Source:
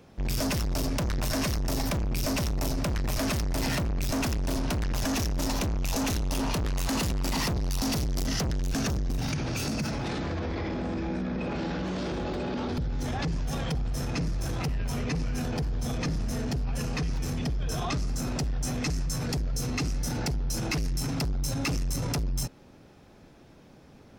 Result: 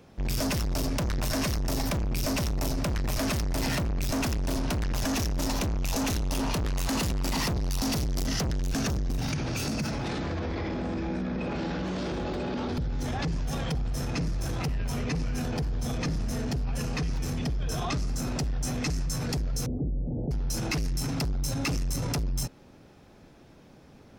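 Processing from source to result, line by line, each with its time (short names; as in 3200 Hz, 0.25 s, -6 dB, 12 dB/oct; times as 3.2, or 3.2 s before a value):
19.66–20.31 steep low-pass 620 Hz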